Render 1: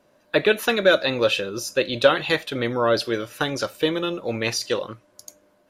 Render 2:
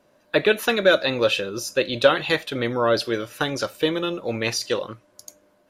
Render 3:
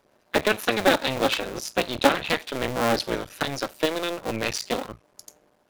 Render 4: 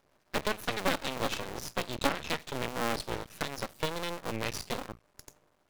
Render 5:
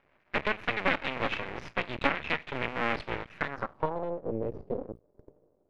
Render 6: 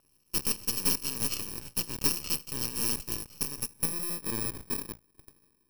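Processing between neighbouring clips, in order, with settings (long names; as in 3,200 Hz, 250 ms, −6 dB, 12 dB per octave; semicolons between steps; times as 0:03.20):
no processing that can be heard
sub-harmonics by changed cycles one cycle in 2, muted
in parallel at +1 dB: downward compressor, threshold −28 dBFS, peak gain reduction 16 dB; on the sum: half-wave rectification; level −9 dB
low-pass filter sweep 2,300 Hz → 470 Hz, 0:03.32–0:04.26
samples in bit-reversed order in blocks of 64 samples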